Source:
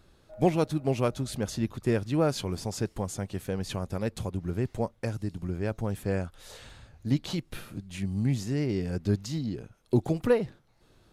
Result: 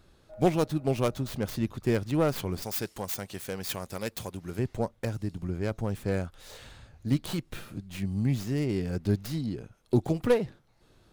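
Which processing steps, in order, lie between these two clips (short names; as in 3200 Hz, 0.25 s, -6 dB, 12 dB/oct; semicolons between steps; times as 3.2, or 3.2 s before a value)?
tracing distortion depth 0.2 ms; 2.62–4.59 tilt +2.5 dB/oct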